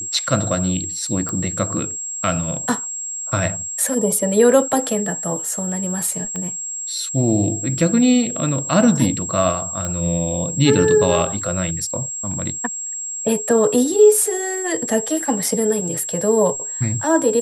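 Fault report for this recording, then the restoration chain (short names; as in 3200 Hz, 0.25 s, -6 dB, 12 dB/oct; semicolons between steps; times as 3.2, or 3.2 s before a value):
tone 7600 Hz -25 dBFS
1.29 pop -12 dBFS
6.36 pop -15 dBFS
9.85 pop -12 dBFS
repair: de-click; notch 7600 Hz, Q 30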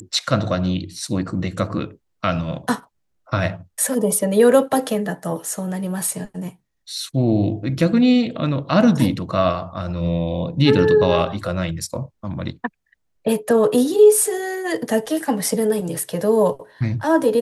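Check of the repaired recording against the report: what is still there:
6.36 pop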